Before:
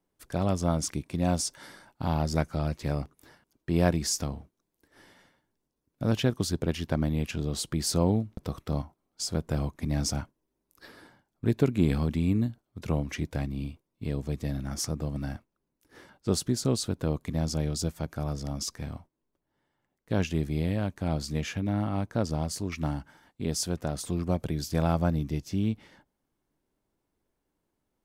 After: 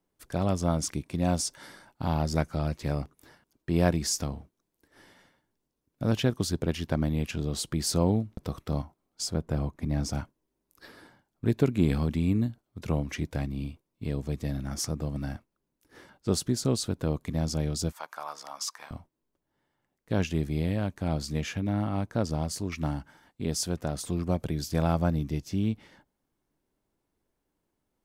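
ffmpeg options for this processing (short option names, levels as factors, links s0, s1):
-filter_complex "[0:a]asettb=1/sr,asplit=3[s0][s1][s2];[s0]atrim=end=9.304[s3];[s1]atrim=start=9.3:end=10.13,asetpts=PTS-STARTPTS,afade=t=in:d=0.004:c=qsin,afade=t=out:st=0.826:d=0.004:c=qsin,highshelf=f=2200:g=-7.5[s4];[s2]atrim=start=10.126[s5];[s3][s4]acrossfade=d=0.004:c1=hsin:c2=qsin[s6];[s6][s5]acrossfade=d=0.004:c1=qsin:c2=hsin,asettb=1/sr,asplit=3[s7][s8][s9];[s7]atrim=end=17.924[s10];[s8]atrim=start=17.92:end=18.91,asetpts=PTS-STARTPTS,afade=t=in:d=0.004:c=qsin,afade=t=out:st=0.986:d=0.004:c=qsin,highpass=f=1000:t=q:w=2.9[s11];[s9]atrim=start=18.906[s12];[s10][s11]acrossfade=d=0.004:c1=hsin:c2=qsin[s13];[s13][s12]acrossfade=d=0.004:c1=qsin:c2=hsin"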